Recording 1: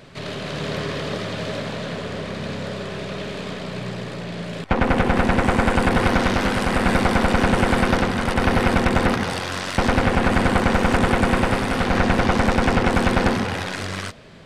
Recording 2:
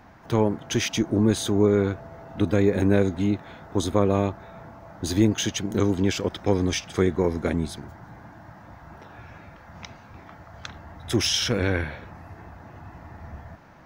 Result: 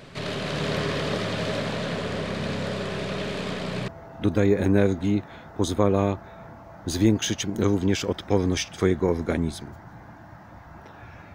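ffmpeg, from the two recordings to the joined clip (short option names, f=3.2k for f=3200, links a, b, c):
-filter_complex "[0:a]apad=whole_dur=11.34,atrim=end=11.34,atrim=end=3.882[a];[1:a]atrim=start=2.038:end=9.5[b];[a][b]acrossfade=d=0.004:c1=hsin:c2=hsin"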